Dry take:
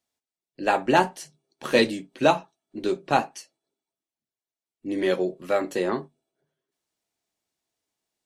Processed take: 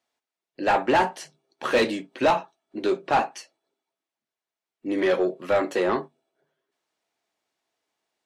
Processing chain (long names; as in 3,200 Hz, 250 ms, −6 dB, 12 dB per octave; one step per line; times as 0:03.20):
mid-hump overdrive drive 22 dB, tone 1,800 Hz, clips at −4 dBFS
level −6 dB